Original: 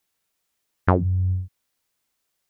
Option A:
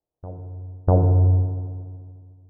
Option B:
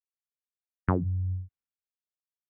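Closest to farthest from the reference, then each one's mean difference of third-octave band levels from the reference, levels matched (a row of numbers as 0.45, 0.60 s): B, A; 1.0, 7.5 dB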